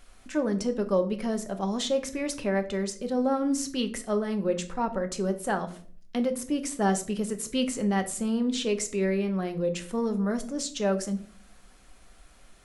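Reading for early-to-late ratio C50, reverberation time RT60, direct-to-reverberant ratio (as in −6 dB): 14.0 dB, 0.50 s, 6.0 dB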